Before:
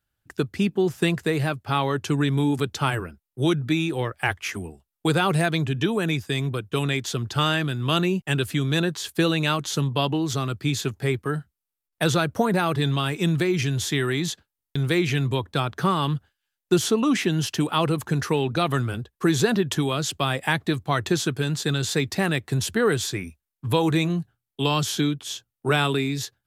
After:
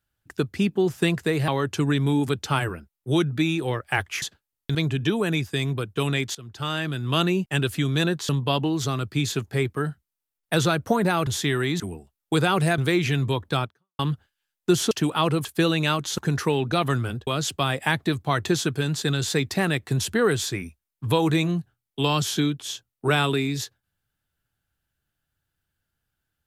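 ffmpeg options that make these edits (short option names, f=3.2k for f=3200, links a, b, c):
-filter_complex "[0:a]asplit=14[a][b][c][d][e][f][g][h][i][j][k][l][m][n];[a]atrim=end=1.482[o];[b]atrim=start=1.788:end=4.532[p];[c]atrim=start=14.278:end=14.812[q];[d]atrim=start=5.508:end=7.11,asetpts=PTS-STARTPTS,afade=t=out:st=1.598:d=0.004:c=hsin:silence=0.112202[r];[e]atrim=start=7.11:end=9.052,asetpts=PTS-STARTPTS,afade=t=in:d=0.79:silence=0.112202[s];[f]atrim=start=9.778:end=12.762[t];[g]atrim=start=13.748:end=14.282[u];[h]atrim=start=4.528:end=5.512[v];[i]atrim=start=14.808:end=16.02,asetpts=PTS-STARTPTS,afade=t=out:st=0.862:d=0.35:c=exp[w];[j]atrim=start=16.02:end=16.942,asetpts=PTS-STARTPTS,afade=t=in:d=0.004:c=hsin[x];[k]atrim=start=17.478:end=18.022[y];[l]atrim=start=9.048:end=9.782[z];[m]atrim=start=18.018:end=19.112[aa];[n]atrim=start=19.878[ab];[o][p]acrossfade=d=0.004:c1=hsin:c2=hsin[ac];[ac][q]acrossfade=d=0.004:c1=hsin:c2=hsin[ad];[r][s]concat=n=2:v=0:a=1[ae];[ad][ae]acrossfade=d=0.004:c1=hsin:c2=hsin[af];[af][t]acrossfade=d=0.004:c1=hsin:c2=hsin[ag];[ag][u]acrossfade=d=0.004:c1=hsin:c2=hsin[ah];[ah][v]acrossfade=d=0.004:c1=hsin:c2=hsin[ai];[w][x]concat=n=2:v=0:a=1[aj];[ai][aj]acrossfade=d=0.004:c1=hsin:c2=hsin[ak];[ak][y]acrossfade=d=0.004:c1=hsin:c2=hsin[al];[al][z]acrossfade=d=0.004:c1=hsin:c2=hsin[am];[am][aa]acrossfade=d=0.004:c1=hsin:c2=hsin[an];[an][ab]acrossfade=d=0.004:c1=hsin:c2=hsin"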